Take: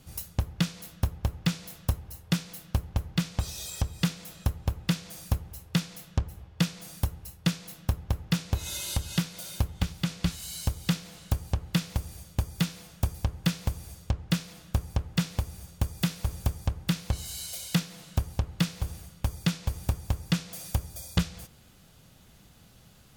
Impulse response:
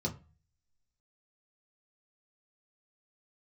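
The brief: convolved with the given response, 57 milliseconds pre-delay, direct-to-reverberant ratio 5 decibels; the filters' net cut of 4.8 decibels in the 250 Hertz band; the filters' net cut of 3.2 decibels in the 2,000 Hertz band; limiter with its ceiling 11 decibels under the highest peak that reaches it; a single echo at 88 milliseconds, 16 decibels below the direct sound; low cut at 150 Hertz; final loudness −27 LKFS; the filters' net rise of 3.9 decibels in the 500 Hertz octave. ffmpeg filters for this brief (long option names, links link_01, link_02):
-filter_complex "[0:a]highpass=150,equalizer=frequency=250:width_type=o:gain=-7,equalizer=frequency=500:width_type=o:gain=6.5,equalizer=frequency=2000:width_type=o:gain=-4.5,alimiter=limit=-23.5dB:level=0:latency=1,aecho=1:1:88:0.158,asplit=2[link_01][link_02];[1:a]atrim=start_sample=2205,adelay=57[link_03];[link_02][link_03]afir=irnorm=-1:irlink=0,volume=-8dB[link_04];[link_01][link_04]amix=inputs=2:normalize=0,volume=10dB"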